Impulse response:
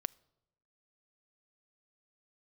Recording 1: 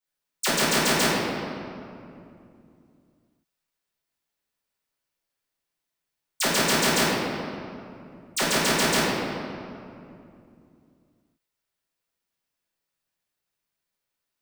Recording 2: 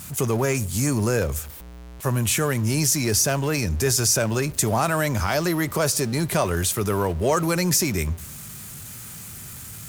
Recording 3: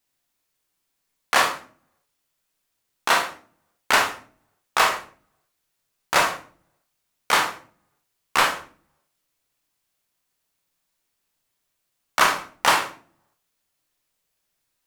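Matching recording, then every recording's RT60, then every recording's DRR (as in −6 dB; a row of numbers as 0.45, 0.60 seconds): 2; 2.6, 0.90, 0.45 seconds; −13.0, 21.0, 2.0 decibels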